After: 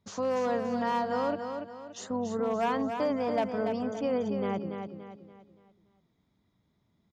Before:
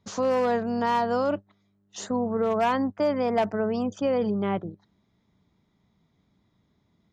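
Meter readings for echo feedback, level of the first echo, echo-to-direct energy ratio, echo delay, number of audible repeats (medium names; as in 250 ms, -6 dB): 39%, -6.5 dB, -6.0 dB, 286 ms, 4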